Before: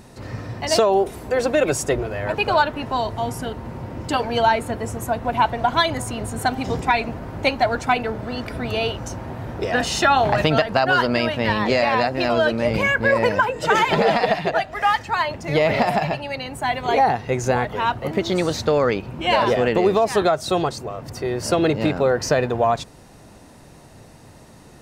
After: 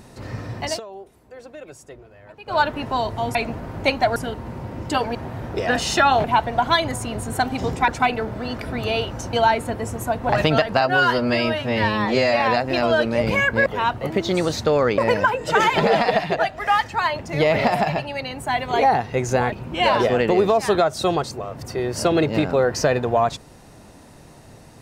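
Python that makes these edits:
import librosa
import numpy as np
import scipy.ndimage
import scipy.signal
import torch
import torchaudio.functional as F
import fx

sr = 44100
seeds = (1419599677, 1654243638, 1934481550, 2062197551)

y = fx.edit(x, sr, fx.fade_down_up(start_s=0.64, length_s=1.98, db=-20.5, fade_s=0.16),
    fx.swap(start_s=4.34, length_s=0.96, other_s=9.2, other_length_s=1.09),
    fx.move(start_s=6.94, length_s=0.81, to_s=3.35),
    fx.stretch_span(start_s=10.81, length_s=1.06, factor=1.5),
    fx.move(start_s=17.67, length_s=1.32, to_s=13.13), tone=tone)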